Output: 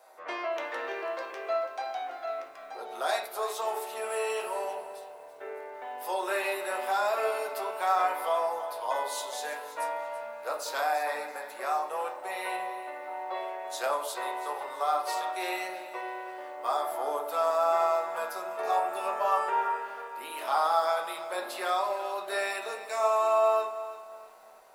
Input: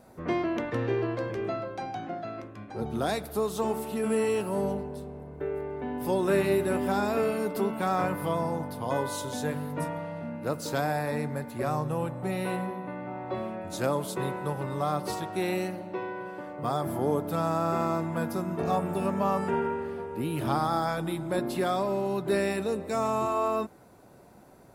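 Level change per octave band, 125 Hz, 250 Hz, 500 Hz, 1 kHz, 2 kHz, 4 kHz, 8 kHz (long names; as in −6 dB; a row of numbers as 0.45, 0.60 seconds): below −40 dB, −19.0 dB, −2.0 dB, +3.0 dB, +2.0 dB, +2.0 dB, +0.5 dB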